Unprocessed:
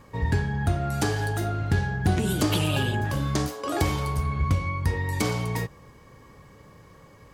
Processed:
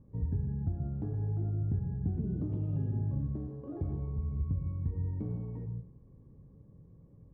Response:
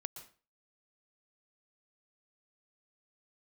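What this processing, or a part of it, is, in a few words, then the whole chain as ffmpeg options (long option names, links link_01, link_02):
television next door: -filter_complex "[0:a]acompressor=threshold=-25dB:ratio=4,lowpass=250[link_01];[1:a]atrim=start_sample=2205[link_02];[link_01][link_02]afir=irnorm=-1:irlink=0"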